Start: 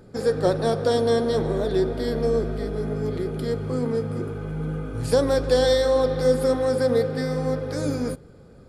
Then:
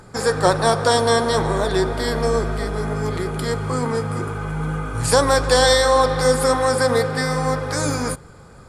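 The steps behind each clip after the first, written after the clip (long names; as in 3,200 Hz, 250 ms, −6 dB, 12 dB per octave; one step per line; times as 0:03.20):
octave-band graphic EQ 250/500/1,000/2,000/8,000 Hz −5/−5/+10/+4/+11 dB
level +5.5 dB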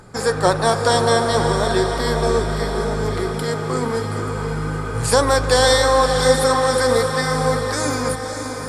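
feedback delay with all-pass diffusion 580 ms, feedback 55%, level −6.5 dB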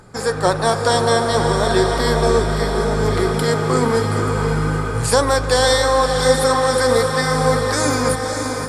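automatic gain control gain up to 7 dB
level −1 dB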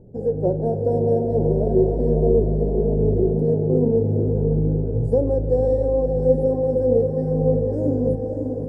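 inverse Chebyshev low-pass filter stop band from 1,100 Hz, stop band 40 dB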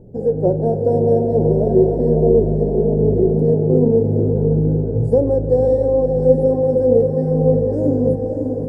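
mains-hum notches 50/100 Hz
level +4.5 dB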